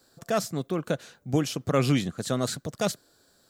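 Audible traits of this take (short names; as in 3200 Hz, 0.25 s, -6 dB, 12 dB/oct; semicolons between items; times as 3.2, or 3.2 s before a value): noise floor -64 dBFS; spectral tilt -5.5 dB/oct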